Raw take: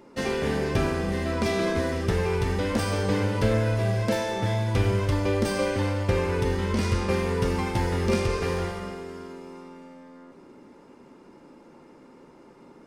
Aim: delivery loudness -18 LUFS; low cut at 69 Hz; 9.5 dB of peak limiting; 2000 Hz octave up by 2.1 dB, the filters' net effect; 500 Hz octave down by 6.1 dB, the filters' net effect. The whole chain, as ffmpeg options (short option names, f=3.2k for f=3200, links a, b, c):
-af "highpass=69,equalizer=f=500:t=o:g=-8,equalizer=f=2k:t=o:g=3,volume=12.5dB,alimiter=limit=-9dB:level=0:latency=1"